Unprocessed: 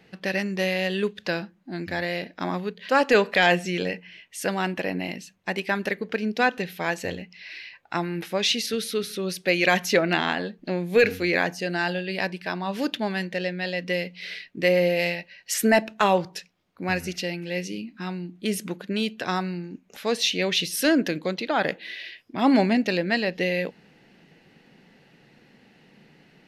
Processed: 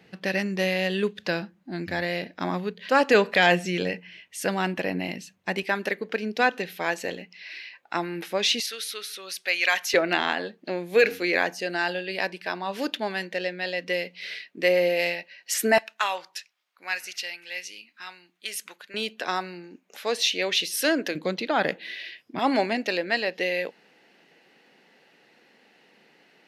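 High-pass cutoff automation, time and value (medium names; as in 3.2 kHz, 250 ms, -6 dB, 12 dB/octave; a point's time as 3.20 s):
61 Hz
from 5.63 s 250 Hz
from 8.60 s 990 Hz
from 9.94 s 310 Hz
from 15.78 s 1.2 kHz
from 18.94 s 390 Hz
from 21.15 s 140 Hz
from 22.39 s 390 Hz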